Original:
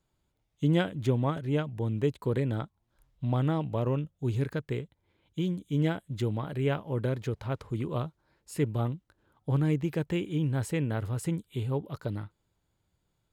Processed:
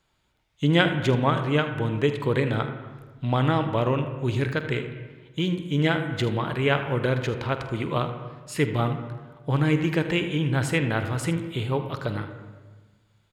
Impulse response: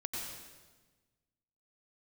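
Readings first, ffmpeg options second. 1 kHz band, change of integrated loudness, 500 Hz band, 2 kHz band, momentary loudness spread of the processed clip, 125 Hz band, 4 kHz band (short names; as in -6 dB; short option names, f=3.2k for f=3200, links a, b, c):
+10.5 dB, +5.5 dB, +6.5 dB, +13.5 dB, 11 LU, +4.0 dB, +13.0 dB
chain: -filter_complex "[0:a]equalizer=f=2.6k:w=0.36:g=13.5,aecho=1:1:48|78:0.178|0.188,asplit=2[a][b];[1:a]atrim=start_sample=2205,lowpass=2.1k[c];[b][c]afir=irnorm=-1:irlink=0,volume=-6.5dB[d];[a][d]amix=inputs=2:normalize=0"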